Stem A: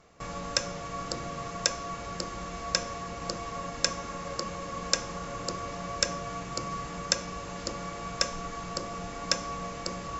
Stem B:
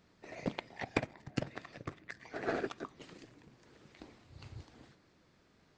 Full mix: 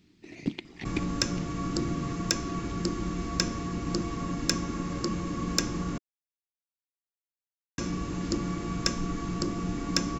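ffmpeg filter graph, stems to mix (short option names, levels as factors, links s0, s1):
-filter_complex "[0:a]asoftclip=type=hard:threshold=0.376,adelay=650,volume=0.944,asplit=3[s0][s1][s2];[s0]atrim=end=5.98,asetpts=PTS-STARTPTS,afade=t=out:st=5.976:d=0.004:c=hsin[s3];[s1]atrim=start=5.98:end=7.78,asetpts=PTS-STARTPTS,volume=0[s4];[s2]atrim=start=7.78,asetpts=PTS-STARTPTS,afade=t=in:d=0.004:c=hsin[s5];[s3][s4][s5]concat=n=3:v=0:a=1[s6];[1:a]highshelf=f=1900:t=q:w=1.5:g=7.5,volume=0.596,afade=t=out:st=0.84:d=0.24:silence=0.298538[s7];[s6][s7]amix=inputs=2:normalize=0,lowshelf=f=420:t=q:w=3:g=8.5"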